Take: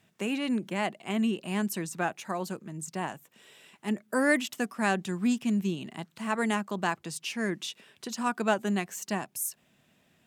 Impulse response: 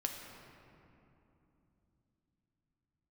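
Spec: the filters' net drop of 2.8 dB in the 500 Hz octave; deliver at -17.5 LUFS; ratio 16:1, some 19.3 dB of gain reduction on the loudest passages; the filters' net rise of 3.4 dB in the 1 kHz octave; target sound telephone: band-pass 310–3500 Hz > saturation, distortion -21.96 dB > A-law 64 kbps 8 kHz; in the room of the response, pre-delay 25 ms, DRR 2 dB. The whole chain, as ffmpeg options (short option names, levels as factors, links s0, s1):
-filter_complex "[0:a]equalizer=f=500:t=o:g=-5,equalizer=f=1000:t=o:g=6,acompressor=threshold=0.0112:ratio=16,asplit=2[s0][s1];[1:a]atrim=start_sample=2205,adelay=25[s2];[s1][s2]afir=irnorm=-1:irlink=0,volume=0.668[s3];[s0][s3]amix=inputs=2:normalize=0,highpass=310,lowpass=3500,asoftclip=threshold=0.0251,volume=26.6" -ar 8000 -c:a pcm_alaw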